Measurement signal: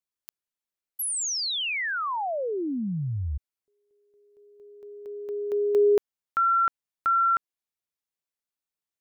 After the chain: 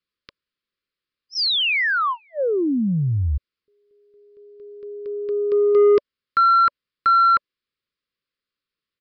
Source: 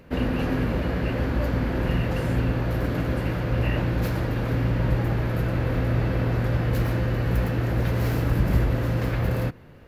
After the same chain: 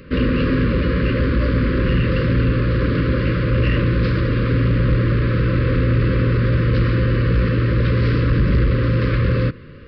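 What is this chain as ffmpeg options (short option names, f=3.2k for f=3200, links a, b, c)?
-af "aresample=11025,asoftclip=type=tanh:threshold=-19dB,aresample=44100,asuperstop=centerf=770:order=12:qfactor=1.7,volume=9dB"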